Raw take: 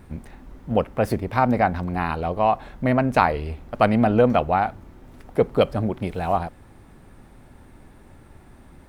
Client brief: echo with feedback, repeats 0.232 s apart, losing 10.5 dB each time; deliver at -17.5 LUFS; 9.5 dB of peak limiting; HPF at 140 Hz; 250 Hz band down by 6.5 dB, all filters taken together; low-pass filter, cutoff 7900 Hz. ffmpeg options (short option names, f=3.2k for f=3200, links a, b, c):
-af "highpass=140,lowpass=7.9k,equalizer=f=250:t=o:g=-7,alimiter=limit=-12.5dB:level=0:latency=1,aecho=1:1:232|464|696:0.299|0.0896|0.0269,volume=9.5dB"